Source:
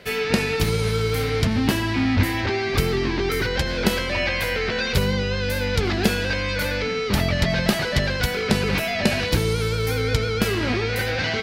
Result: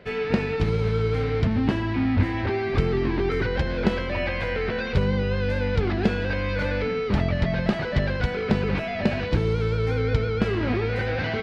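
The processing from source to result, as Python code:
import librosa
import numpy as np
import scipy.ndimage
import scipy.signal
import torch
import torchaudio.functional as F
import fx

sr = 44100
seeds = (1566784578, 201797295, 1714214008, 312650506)

y = fx.rider(x, sr, range_db=10, speed_s=0.5)
y = fx.spacing_loss(y, sr, db_at_10k=30)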